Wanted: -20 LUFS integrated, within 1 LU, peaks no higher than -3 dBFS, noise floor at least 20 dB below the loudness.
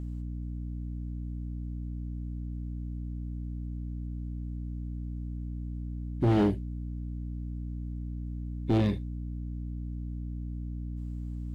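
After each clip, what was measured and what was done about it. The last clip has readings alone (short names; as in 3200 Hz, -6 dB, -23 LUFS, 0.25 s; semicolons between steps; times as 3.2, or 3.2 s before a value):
clipped 0.8%; flat tops at -19.5 dBFS; hum 60 Hz; harmonics up to 300 Hz; hum level -33 dBFS; loudness -35.0 LUFS; peak -19.5 dBFS; loudness target -20.0 LUFS
-> clip repair -19.5 dBFS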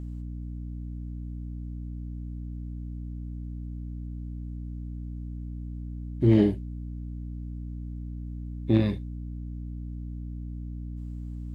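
clipped 0.0%; hum 60 Hz; harmonics up to 300 Hz; hum level -33 dBFS
-> notches 60/120/180/240/300 Hz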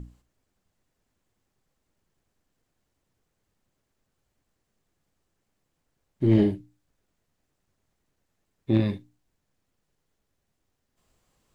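hum none; loudness -24.5 LUFS; peak -9.0 dBFS; loudness target -20.0 LUFS
-> gain +4.5 dB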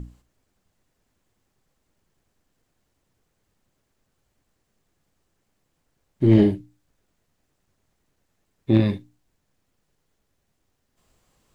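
loudness -20.0 LUFS; peak -4.5 dBFS; noise floor -74 dBFS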